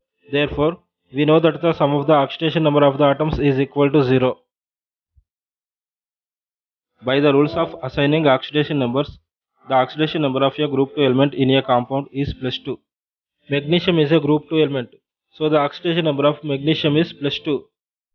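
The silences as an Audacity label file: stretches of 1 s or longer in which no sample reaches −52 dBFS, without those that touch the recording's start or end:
5.190000	6.990000	silence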